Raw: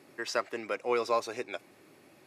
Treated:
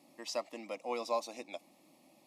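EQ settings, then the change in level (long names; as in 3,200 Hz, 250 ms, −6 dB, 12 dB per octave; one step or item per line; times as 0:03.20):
phaser with its sweep stopped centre 410 Hz, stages 6
−2.5 dB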